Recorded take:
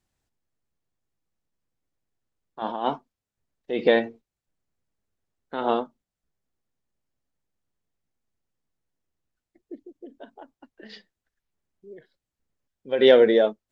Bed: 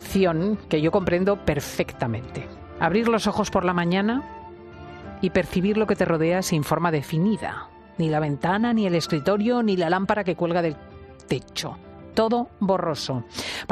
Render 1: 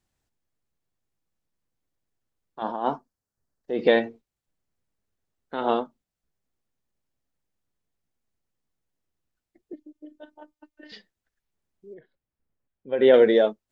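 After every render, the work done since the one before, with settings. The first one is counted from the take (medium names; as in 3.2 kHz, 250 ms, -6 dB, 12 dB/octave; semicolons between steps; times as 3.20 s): 2.63–3.84 s: high-order bell 2.8 kHz -8.5 dB 1.1 oct; 9.73–10.92 s: robot voice 302 Hz; 11.94–13.14 s: distance through air 420 m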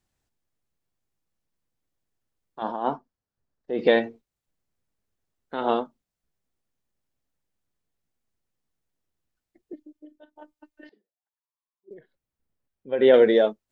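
2.83–3.78 s: distance through air 120 m; 9.83–10.36 s: fade out, to -11 dB; 10.89–11.91 s: auto-wah 300–1100 Hz, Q 8, down, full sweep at -42 dBFS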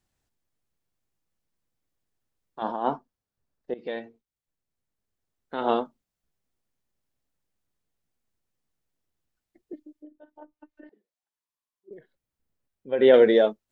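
3.74–5.80 s: fade in, from -19 dB; 9.96–11.93 s: low-pass that closes with the level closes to 1.2 kHz, closed at -45.5 dBFS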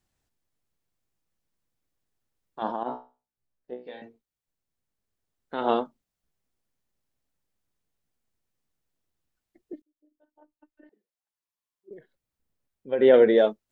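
2.83–4.02 s: feedback comb 62 Hz, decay 0.31 s, mix 100%; 9.82–11.93 s: fade in; 12.94–13.38 s: distance through air 230 m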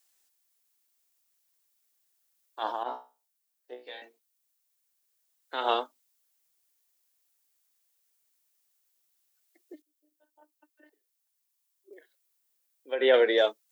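Chebyshev high-pass 280 Hz, order 4; tilt EQ +4.5 dB/octave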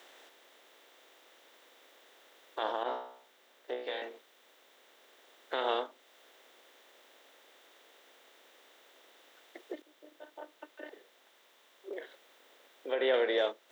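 spectral levelling over time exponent 0.6; compression 1.5:1, threshold -41 dBFS, peak gain reduction 9.5 dB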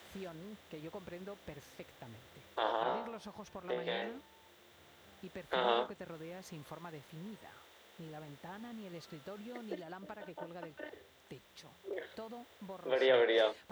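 add bed -26.5 dB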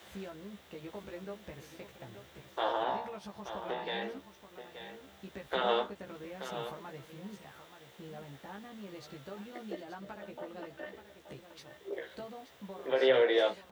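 doubling 15 ms -3 dB; delay 878 ms -10.5 dB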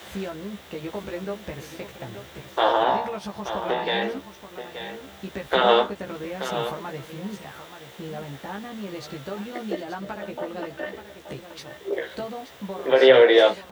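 trim +12 dB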